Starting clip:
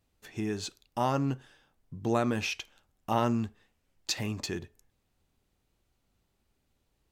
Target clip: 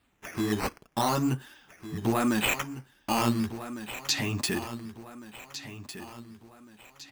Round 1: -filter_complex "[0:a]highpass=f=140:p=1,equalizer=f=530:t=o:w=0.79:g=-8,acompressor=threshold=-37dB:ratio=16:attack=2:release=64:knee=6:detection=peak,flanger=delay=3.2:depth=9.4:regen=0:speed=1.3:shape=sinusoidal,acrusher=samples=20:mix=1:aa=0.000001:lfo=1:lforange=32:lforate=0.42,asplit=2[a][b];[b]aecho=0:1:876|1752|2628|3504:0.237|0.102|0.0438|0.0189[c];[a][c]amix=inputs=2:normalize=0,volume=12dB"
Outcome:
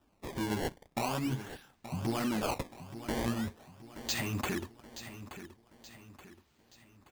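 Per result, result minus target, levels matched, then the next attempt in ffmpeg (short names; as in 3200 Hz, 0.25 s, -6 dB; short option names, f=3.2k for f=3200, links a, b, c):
compressor: peak gain reduction +8 dB; echo 0.578 s early; decimation with a swept rate: distortion +6 dB
-filter_complex "[0:a]highpass=f=140:p=1,equalizer=f=530:t=o:w=0.79:g=-8,acompressor=threshold=-28.5dB:ratio=16:attack=2:release=64:knee=6:detection=peak,flanger=delay=3.2:depth=9.4:regen=0:speed=1.3:shape=sinusoidal,acrusher=samples=20:mix=1:aa=0.000001:lfo=1:lforange=32:lforate=0.42,asplit=2[a][b];[b]aecho=0:1:876|1752|2628|3504:0.237|0.102|0.0438|0.0189[c];[a][c]amix=inputs=2:normalize=0,volume=12dB"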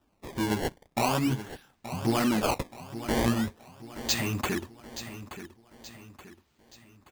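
echo 0.578 s early; decimation with a swept rate: distortion +6 dB
-filter_complex "[0:a]highpass=f=140:p=1,equalizer=f=530:t=o:w=0.79:g=-8,acompressor=threshold=-28.5dB:ratio=16:attack=2:release=64:knee=6:detection=peak,flanger=delay=3.2:depth=9.4:regen=0:speed=1.3:shape=sinusoidal,acrusher=samples=20:mix=1:aa=0.000001:lfo=1:lforange=32:lforate=0.42,asplit=2[a][b];[b]aecho=0:1:1454|2908|4362|5816:0.237|0.102|0.0438|0.0189[c];[a][c]amix=inputs=2:normalize=0,volume=12dB"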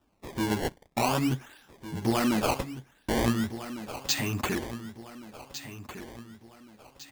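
decimation with a swept rate: distortion +6 dB
-filter_complex "[0:a]highpass=f=140:p=1,equalizer=f=530:t=o:w=0.79:g=-8,acompressor=threshold=-28.5dB:ratio=16:attack=2:release=64:knee=6:detection=peak,flanger=delay=3.2:depth=9.4:regen=0:speed=1.3:shape=sinusoidal,acrusher=samples=7:mix=1:aa=0.000001:lfo=1:lforange=11.2:lforate=0.42,asplit=2[a][b];[b]aecho=0:1:1454|2908|4362|5816:0.237|0.102|0.0438|0.0189[c];[a][c]amix=inputs=2:normalize=0,volume=12dB"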